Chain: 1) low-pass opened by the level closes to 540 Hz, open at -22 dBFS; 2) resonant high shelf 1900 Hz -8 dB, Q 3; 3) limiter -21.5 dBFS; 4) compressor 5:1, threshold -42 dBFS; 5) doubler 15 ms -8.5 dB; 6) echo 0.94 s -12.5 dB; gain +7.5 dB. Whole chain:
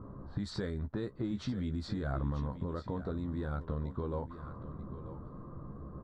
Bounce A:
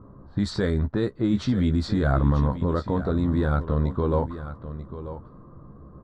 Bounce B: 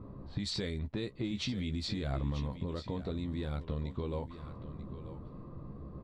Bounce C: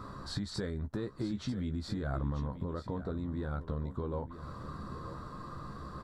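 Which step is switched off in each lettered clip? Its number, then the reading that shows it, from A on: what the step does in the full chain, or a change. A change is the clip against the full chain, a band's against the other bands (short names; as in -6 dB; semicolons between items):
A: 4, mean gain reduction 8.0 dB; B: 2, 4 kHz band +10.0 dB; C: 1, 4 kHz band +4.0 dB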